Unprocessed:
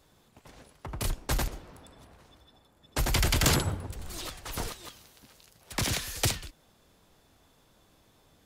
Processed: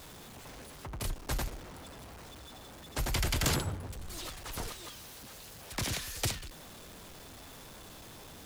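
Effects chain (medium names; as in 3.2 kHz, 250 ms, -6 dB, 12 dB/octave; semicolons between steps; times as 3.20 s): jump at every zero crossing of -38.5 dBFS; trim -6 dB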